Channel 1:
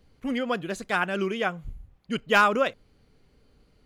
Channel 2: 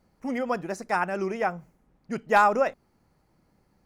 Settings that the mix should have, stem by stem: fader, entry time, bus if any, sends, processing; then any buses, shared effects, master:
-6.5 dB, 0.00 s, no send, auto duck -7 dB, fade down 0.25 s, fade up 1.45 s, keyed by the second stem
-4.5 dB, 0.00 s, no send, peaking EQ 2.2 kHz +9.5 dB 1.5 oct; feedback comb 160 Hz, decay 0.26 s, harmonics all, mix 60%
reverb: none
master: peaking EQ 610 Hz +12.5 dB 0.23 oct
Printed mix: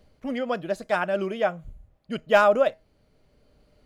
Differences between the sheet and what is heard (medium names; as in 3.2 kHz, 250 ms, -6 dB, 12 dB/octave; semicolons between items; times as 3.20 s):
stem 1 -6.5 dB -> +2.5 dB; stem 2: missing peaking EQ 2.2 kHz +9.5 dB 1.5 oct